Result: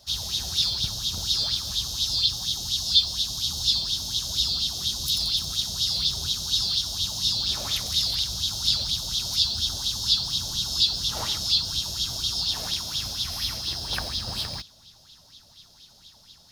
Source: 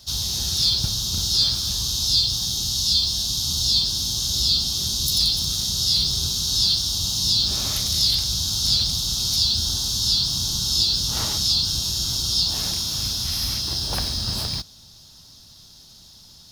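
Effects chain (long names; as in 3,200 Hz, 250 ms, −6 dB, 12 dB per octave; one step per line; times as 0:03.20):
auto-filter bell 4.2 Hz 550–3,600 Hz +15 dB
level −7.5 dB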